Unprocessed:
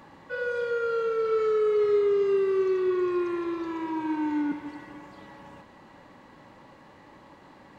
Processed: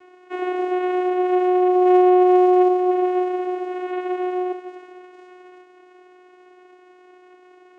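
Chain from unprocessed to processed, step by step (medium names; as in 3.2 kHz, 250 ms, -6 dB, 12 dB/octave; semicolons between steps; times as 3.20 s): 1.85–2.68 s: waveshaping leveller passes 2; vocoder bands 4, saw 364 Hz; trim +7 dB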